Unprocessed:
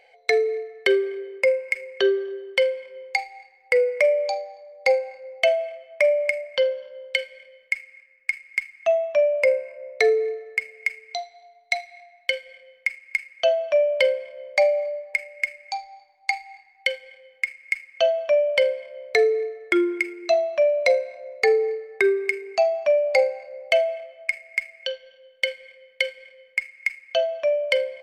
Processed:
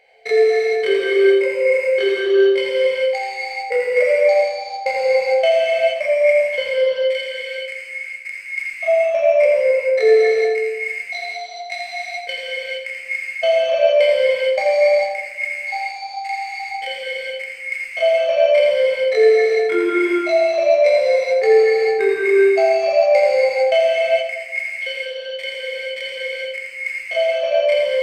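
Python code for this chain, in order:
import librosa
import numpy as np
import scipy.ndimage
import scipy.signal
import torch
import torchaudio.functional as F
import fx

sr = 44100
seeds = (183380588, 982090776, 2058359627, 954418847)

y = fx.spec_steps(x, sr, hold_ms=50)
y = fx.echo_multitap(y, sr, ms=(84, 243), db=(-7.5, -16.5))
y = fx.rev_gated(y, sr, seeds[0], gate_ms=480, shape='flat', drr_db=-6.5)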